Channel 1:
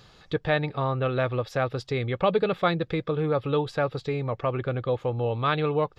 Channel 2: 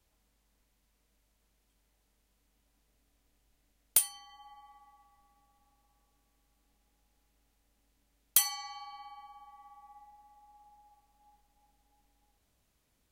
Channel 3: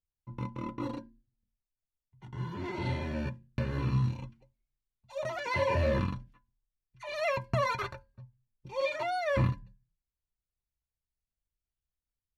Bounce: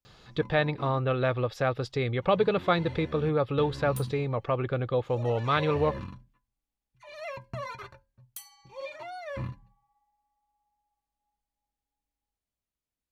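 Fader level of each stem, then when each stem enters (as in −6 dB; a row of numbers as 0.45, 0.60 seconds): −1.0, −18.5, −8.0 decibels; 0.05, 0.00, 0.00 seconds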